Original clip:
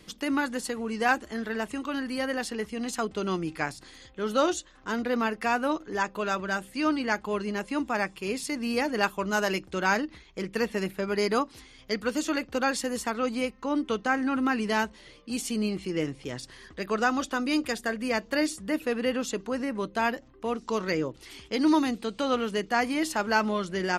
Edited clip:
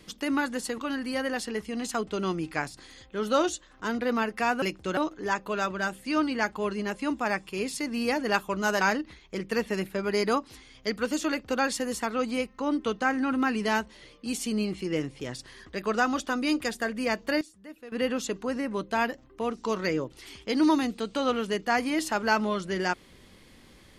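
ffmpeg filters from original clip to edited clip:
-filter_complex "[0:a]asplit=7[a][b][c][d][e][f][g];[a]atrim=end=0.782[h];[b]atrim=start=1.818:end=5.662[i];[c]atrim=start=9.498:end=9.852[j];[d]atrim=start=5.658:end=9.502[k];[e]atrim=start=9.848:end=18.45,asetpts=PTS-STARTPTS,afade=t=out:st=8.452:d=0.15:c=log:silence=0.149624[l];[f]atrim=start=18.45:end=18.96,asetpts=PTS-STARTPTS,volume=-16.5dB[m];[g]atrim=start=18.96,asetpts=PTS-STARTPTS,afade=t=in:d=0.15:c=log:silence=0.149624[n];[h][i]acrossfade=d=0.004:c1=hsin:c2=hsin[o];[o][j]acrossfade=d=0.004:c1=hsin:c2=hsin[p];[p][k]acrossfade=d=0.004:c1=hsin:c2=hsin[q];[l][m][n]concat=n=3:v=0:a=1[r];[q][r]acrossfade=d=0.004:c1=hsin:c2=hsin"

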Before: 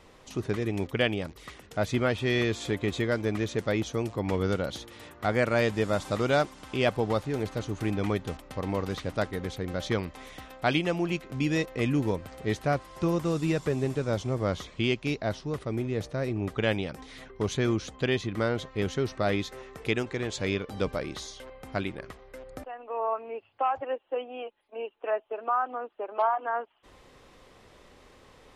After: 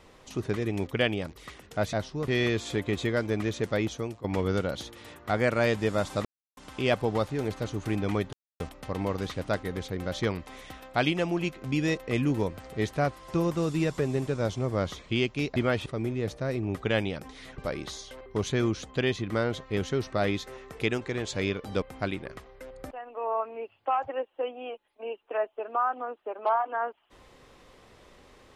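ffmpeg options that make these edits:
-filter_complex "[0:a]asplit=12[a][b][c][d][e][f][g][h][i][j][k][l];[a]atrim=end=1.932[m];[b]atrim=start=15.238:end=15.592[n];[c]atrim=start=2.228:end=4.19,asetpts=PTS-STARTPTS,afade=t=out:st=1.462:d=0.5:c=qsin:silence=0.177828[o];[d]atrim=start=4.19:end=6.2,asetpts=PTS-STARTPTS,afade=t=in:d=0.004:c=hsin:silence=0.177828,afade=t=out:st=2.006:d=0.004:c=hsin[p];[e]atrim=start=6.2:end=6.52,asetpts=PTS-STARTPTS,volume=0[q];[f]atrim=start=6.52:end=8.28,asetpts=PTS-STARTPTS,afade=t=in:d=0.004:c=hsin,afade=t=out:st=1.756:d=0.004:c=hsin,apad=pad_dur=0.27[r];[g]atrim=start=8.28:end=15.242,asetpts=PTS-STARTPTS,afade=t=in:d=0.004:c=hsin[s];[h]atrim=start=1.928:end=2.232[t];[i]atrim=start=15.588:end=17.312[u];[j]atrim=start=20.868:end=21.552[v];[k]atrim=start=17.308:end=20.872[w];[l]atrim=start=21.548[x];[m][n]acrossfade=d=0.004:c1=hsin:c2=hsin[y];[o][p][q][r][s]concat=n=5:v=0:a=1[z];[y][z]acrossfade=d=0.004:c1=hsin:c2=hsin[aa];[aa][t]acrossfade=d=0.004:c1=hsin:c2=hsin[ab];[ab][u]acrossfade=d=0.004:c1=hsin:c2=hsin[ac];[ac][v]acrossfade=d=0.004:c1=hsin:c2=hsin[ad];[ad][w]acrossfade=d=0.004:c1=hsin:c2=hsin[ae];[ae][x]acrossfade=d=0.004:c1=hsin:c2=hsin"

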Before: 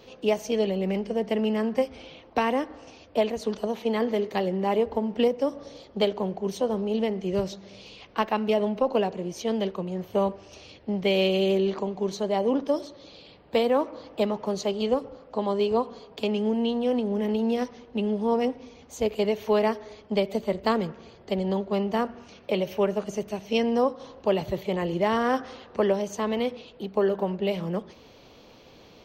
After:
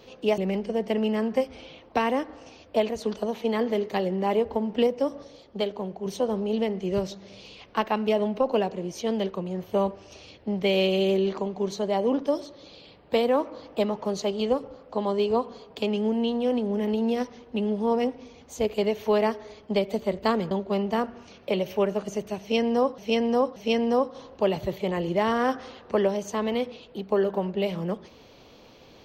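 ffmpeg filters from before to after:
-filter_complex "[0:a]asplit=7[a][b][c][d][e][f][g];[a]atrim=end=0.382[h];[b]atrim=start=0.788:end=5.652[i];[c]atrim=start=5.648:end=6.472,asetpts=PTS-STARTPTS,volume=-4dB[j];[d]atrim=start=6.468:end=20.922[k];[e]atrim=start=21.518:end=23.992[l];[f]atrim=start=23.408:end=23.992[m];[g]atrim=start=23.408[n];[h][i]acrossfade=d=0.004:c1=hsin:c2=hsin[o];[o][j]acrossfade=d=0.004:c1=hsin:c2=hsin[p];[p][k]acrossfade=d=0.004:c1=hsin:c2=hsin[q];[q][l]acrossfade=d=0.004:c1=hsin:c2=hsin[r];[r][m]acrossfade=d=0.004:c1=hsin:c2=hsin[s];[s][n]acrossfade=d=0.004:c1=hsin:c2=hsin"

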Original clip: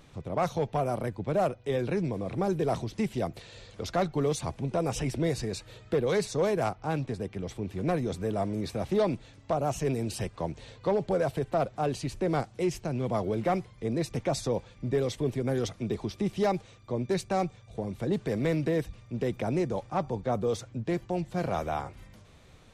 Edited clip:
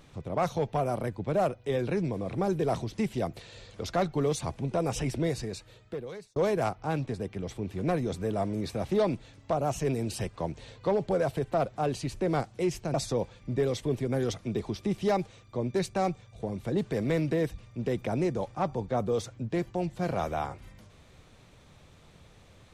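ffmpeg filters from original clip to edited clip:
-filter_complex "[0:a]asplit=3[a][b][c];[a]atrim=end=6.36,asetpts=PTS-STARTPTS,afade=t=out:st=5.15:d=1.21[d];[b]atrim=start=6.36:end=12.942,asetpts=PTS-STARTPTS,afade=t=in:d=0.004:c=hsin[e];[c]atrim=start=14.288[f];[d][e]concat=n=2:v=0:a=1[g];[g][f]acrossfade=d=0.004:c1=hsin:c2=hsin"

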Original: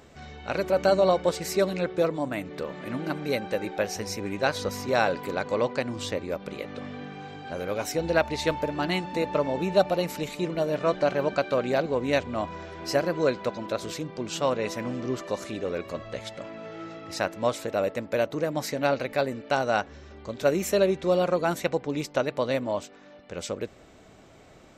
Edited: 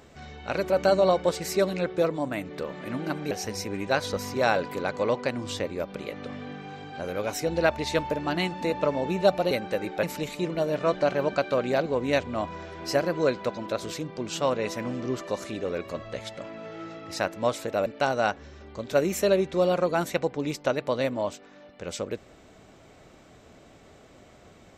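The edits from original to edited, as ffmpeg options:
-filter_complex "[0:a]asplit=5[a][b][c][d][e];[a]atrim=end=3.312[f];[b]atrim=start=3.828:end=10.032[g];[c]atrim=start=3.308:end=3.832[h];[d]atrim=start=10.028:end=17.862[i];[e]atrim=start=19.358[j];[f][g]acrossfade=d=0.004:c1=hsin:c2=hsin[k];[k][h]acrossfade=d=0.004:c1=hsin:c2=hsin[l];[l][i]acrossfade=d=0.004:c1=hsin:c2=hsin[m];[m][j]acrossfade=d=0.004:c1=hsin:c2=hsin"

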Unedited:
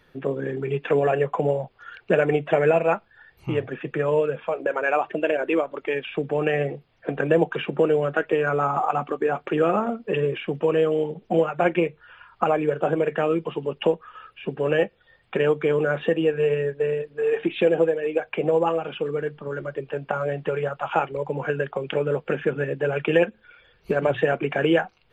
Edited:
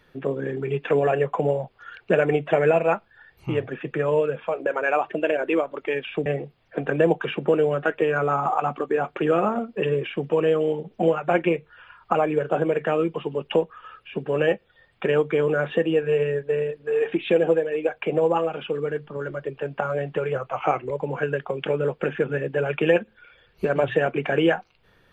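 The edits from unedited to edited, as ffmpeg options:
-filter_complex "[0:a]asplit=4[a][b][c][d];[a]atrim=end=6.262[e];[b]atrim=start=6.568:end=20.664[f];[c]atrim=start=20.66:end=21.17,asetpts=PTS-STARTPTS,asetrate=40572,aresample=44100[g];[d]atrim=start=21.166[h];[e][f]acrossfade=d=0.004:c1=hsin:c2=hsin[i];[i][g]acrossfade=d=0.004:c1=hsin:c2=hsin[j];[j][h]acrossfade=d=0.004:c1=hsin:c2=hsin"

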